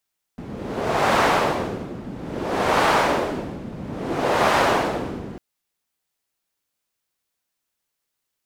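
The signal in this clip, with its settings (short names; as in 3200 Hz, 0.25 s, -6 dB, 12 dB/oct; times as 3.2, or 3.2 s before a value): wind-like swept noise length 5.00 s, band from 210 Hz, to 910 Hz, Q 1, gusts 3, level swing 16.5 dB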